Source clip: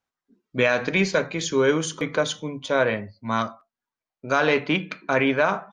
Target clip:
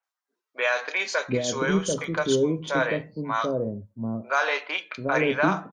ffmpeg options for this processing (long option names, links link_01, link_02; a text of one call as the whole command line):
ffmpeg -i in.wav -filter_complex "[0:a]acrossover=split=550|2800[link_01][link_02][link_03];[link_03]adelay=30[link_04];[link_01]adelay=740[link_05];[link_05][link_02][link_04]amix=inputs=3:normalize=0" out.wav